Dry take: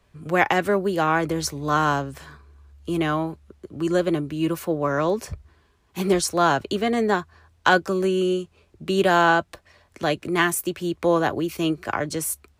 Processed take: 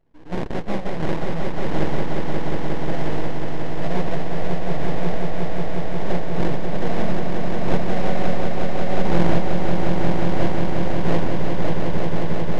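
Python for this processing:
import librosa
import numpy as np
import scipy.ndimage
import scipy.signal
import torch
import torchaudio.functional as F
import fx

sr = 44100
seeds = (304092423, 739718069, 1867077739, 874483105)

p1 = fx.hpss(x, sr, part='percussive', gain_db=-9)
p2 = fx.sample_hold(p1, sr, seeds[0], rate_hz=1300.0, jitter_pct=20)
p3 = np.abs(p2)
p4 = fx.spacing_loss(p3, sr, db_at_10k=21)
y = p4 + fx.echo_swell(p4, sr, ms=179, loudest=5, wet_db=-5.5, dry=0)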